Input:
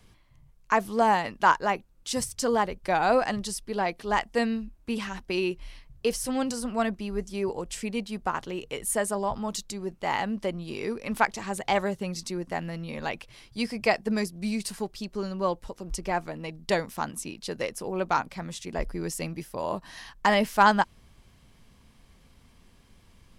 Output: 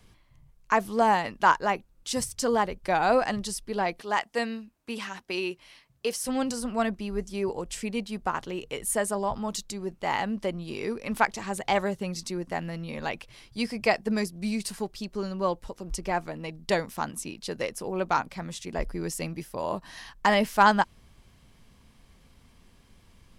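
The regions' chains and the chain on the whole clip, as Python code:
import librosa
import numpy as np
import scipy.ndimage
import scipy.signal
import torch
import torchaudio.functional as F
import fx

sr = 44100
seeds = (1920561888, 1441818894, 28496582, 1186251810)

y = fx.chain(x, sr, fx.highpass(hz=97.0, slope=12),
    fx.low_shelf(hz=310.0, db=-9.5), at=(4.01, 6.27))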